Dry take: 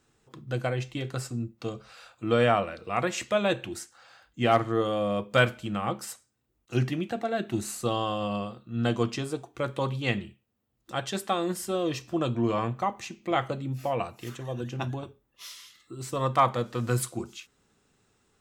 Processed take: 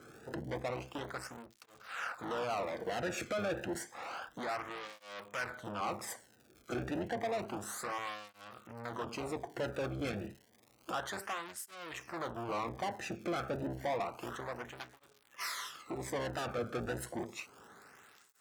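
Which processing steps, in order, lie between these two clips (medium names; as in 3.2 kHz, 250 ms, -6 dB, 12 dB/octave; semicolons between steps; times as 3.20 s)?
octave divider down 1 oct, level -3 dB; resonant high shelf 2.3 kHz -8.5 dB, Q 1.5; in parallel at +2 dB: peak limiter -17.5 dBFS, peak gain reduction 10.5 dB; on the sum: compression 2.5:1, threshold -41 dBFS, peak gain reduction 19 dB; valve stage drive 43 dB, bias 0.65; crackle 160 per s -57 dBFS; cancelling through-zero flanger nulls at 0.3 Hz, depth 1.1 ms; trim +12.5 dB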